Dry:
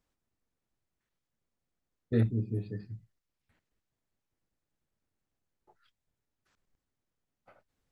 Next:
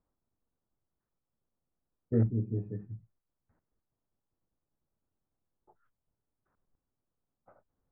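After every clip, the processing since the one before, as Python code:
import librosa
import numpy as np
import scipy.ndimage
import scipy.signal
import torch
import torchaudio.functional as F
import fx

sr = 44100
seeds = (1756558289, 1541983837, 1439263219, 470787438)

y = scipy.signal.sosfilt(scipy.signal.butter(4, 1300.0, 'lowpass', fs=sr, output='sos'), x)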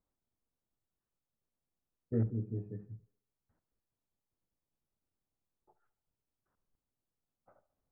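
y = fx.echo_wet_bandpass(x, sr, ms=70, feedback_pct=52, hz=700.0, wet_db=-16)
y = y * 10.0 ** (-5.0 / 20.0)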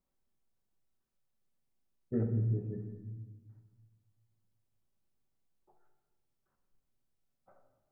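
y = fx.room_shoebox(x, sr, seeds[0], volume_m3=870.0, walls='mixed', distance_m=1.1)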